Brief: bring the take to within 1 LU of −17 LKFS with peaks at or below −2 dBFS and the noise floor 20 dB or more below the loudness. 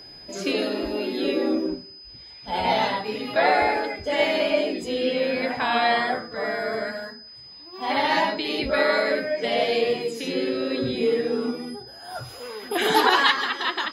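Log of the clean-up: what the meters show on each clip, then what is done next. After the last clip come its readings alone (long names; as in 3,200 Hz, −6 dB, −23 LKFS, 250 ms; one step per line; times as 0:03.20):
interfering tone 5,000 Hz; level of the tone −42 dBFS; integrated loudness −23.5 LKFS; sample peak −4.5 dBFS; target loudness −17.0 LKFS
→ notch filter 5,000 Hz, Q 30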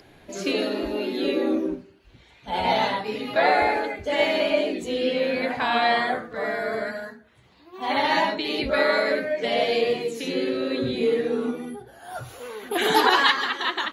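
interfering tone none found; integrated loudness −23.5 LKFS; sample peak −4.5 dBFS; target loudness −17.0 LKFS
→ level +6.5 dB
brickwall limiter −2 dBFS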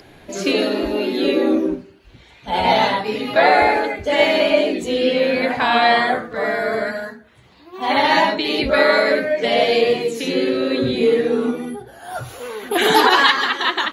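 integrated loudness −17.5 LKFS; sample peak −2.0 dBFS; background noise floor −48 dBFS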